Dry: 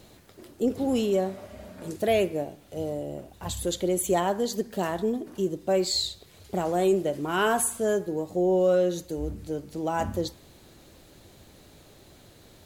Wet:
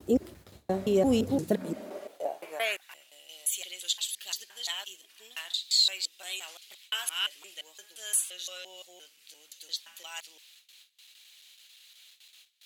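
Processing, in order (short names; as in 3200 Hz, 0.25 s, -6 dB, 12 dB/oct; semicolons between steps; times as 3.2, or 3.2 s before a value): slices in reverse order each 0.173 s, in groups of 4; gate with hold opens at -42 dBFS; high-pass sweep 65 Hz -> 2900 Hz, 1.04–3.06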